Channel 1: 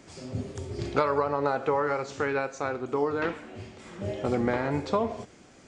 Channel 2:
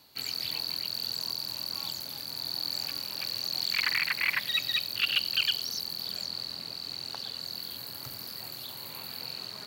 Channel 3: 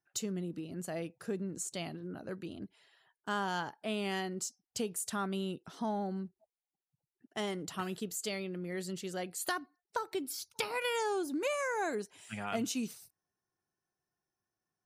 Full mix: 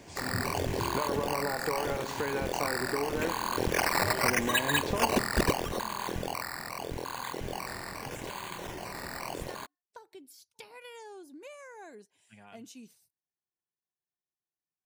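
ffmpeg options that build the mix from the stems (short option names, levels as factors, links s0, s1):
-filter_complex "[0:a]acompressor=threshold=0.0355:ratio=6,volume=1[s0];[1:a]acrusher=samples=11:mix=1:aa=0.000001:lfo=1:lforange=6.6:lforate=0.8,volume=1.19[s1];[2:a]volume=0.211[s2];[s0][s1][s2]amix=inputs=3:normalize=0,bandreject=f=1300:w=5.6"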